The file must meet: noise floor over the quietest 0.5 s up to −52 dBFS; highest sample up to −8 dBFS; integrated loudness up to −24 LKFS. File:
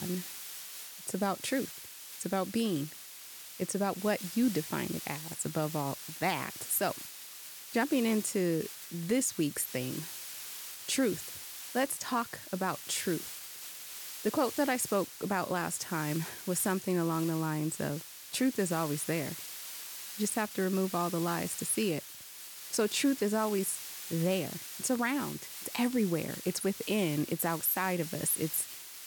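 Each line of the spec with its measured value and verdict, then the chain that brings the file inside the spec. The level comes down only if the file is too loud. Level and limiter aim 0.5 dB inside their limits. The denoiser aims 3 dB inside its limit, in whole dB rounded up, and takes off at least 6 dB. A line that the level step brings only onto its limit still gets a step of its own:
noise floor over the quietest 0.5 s −48 dBFS: out of spec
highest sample −17.5 dBFS: in spec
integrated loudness −33.0 LKFS: in spec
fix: broadband denoise 7 dB, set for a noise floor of −48 dBFS

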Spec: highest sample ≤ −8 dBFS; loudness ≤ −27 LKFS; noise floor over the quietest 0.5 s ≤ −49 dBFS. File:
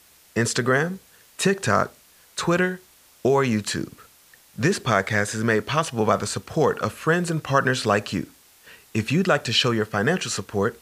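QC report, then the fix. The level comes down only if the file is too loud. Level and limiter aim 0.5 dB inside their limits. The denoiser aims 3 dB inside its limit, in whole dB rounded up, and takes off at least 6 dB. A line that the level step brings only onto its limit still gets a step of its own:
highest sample −5.0 dBFS: out of spec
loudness −23.0 LKFS: out of spec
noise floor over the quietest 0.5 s −54 dBFS: in spec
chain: level −4.5 dB

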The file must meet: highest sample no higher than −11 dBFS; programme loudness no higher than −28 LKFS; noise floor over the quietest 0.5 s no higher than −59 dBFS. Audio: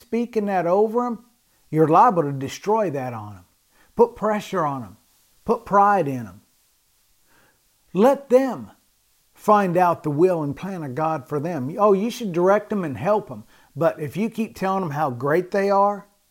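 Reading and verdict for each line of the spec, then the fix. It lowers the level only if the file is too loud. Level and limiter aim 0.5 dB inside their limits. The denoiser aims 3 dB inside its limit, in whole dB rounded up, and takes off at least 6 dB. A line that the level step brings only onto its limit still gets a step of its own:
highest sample −4.5 dBFS: out of spec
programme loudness −21.0 LKFS: out of spec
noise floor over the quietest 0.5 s −63 dBFS: in spec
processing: level −7.5 dB

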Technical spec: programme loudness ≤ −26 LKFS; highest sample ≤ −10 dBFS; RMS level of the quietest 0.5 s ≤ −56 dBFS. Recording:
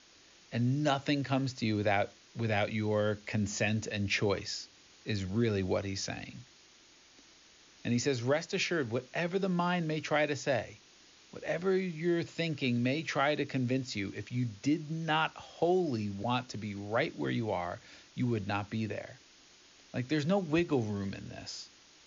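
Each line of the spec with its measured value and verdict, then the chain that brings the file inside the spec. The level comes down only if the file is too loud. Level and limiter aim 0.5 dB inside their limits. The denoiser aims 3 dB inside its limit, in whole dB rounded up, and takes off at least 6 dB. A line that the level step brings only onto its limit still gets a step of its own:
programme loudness −33.0 LKFS: in spec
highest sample −16.5 dBFS: in spec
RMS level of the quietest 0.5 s −60 dBFS: in spec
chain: no processing needed

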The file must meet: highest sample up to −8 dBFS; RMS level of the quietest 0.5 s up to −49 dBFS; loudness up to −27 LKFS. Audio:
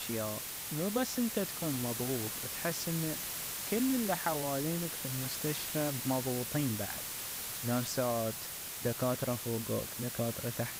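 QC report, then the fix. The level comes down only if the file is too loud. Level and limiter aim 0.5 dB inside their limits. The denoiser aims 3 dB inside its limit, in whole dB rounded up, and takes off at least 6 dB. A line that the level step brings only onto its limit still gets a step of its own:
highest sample −18.0 dBFS: in spec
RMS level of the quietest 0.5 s −42 dBFS: out of spec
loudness −34.5 LKFS: in spec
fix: broadband denoise 10 dB, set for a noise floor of −42 dBFS

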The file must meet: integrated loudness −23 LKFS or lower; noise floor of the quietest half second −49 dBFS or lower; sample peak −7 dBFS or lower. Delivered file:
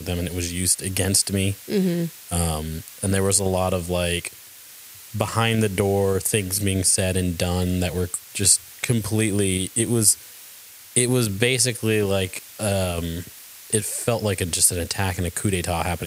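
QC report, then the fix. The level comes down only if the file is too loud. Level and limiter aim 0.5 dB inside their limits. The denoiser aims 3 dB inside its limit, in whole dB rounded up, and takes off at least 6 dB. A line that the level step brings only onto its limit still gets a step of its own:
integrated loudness −21.5 LKFS: out of spec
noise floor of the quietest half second −44 dBFS: out of spec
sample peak −2.5 dBFS: out of spec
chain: broadband denoise 6 dB, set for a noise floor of −44 dBFS
level −2 dB
brickwall limiter −7.5 dBFS

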